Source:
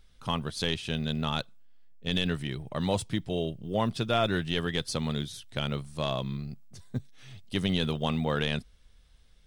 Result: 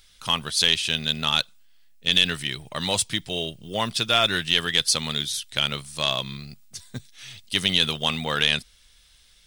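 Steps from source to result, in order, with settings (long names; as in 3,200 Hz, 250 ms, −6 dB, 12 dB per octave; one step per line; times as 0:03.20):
tilt shelving filter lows −9.5 dB, about 1,300 Hz
level +6.5 dB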